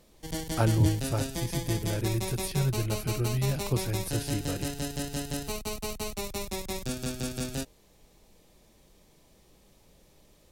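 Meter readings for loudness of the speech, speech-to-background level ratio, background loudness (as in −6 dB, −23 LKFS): −31.0 LKFS, 3.5 dB, −34.5 LKFS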